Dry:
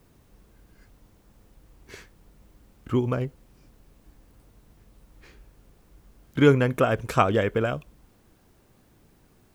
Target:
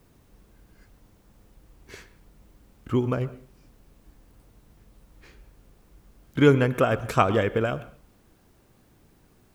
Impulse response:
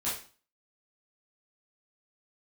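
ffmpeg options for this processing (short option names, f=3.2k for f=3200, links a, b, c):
-filter_complex "[0:a]asplit=2[a][b];[1:a]atrim=start_sample=2205,lowpass=4.2k,adelay=93[c];[b][c]afir=irnorm=-1:irlink=0,volume=-21.5dB[d];[a][d]amix=inputs=2:normalize=0"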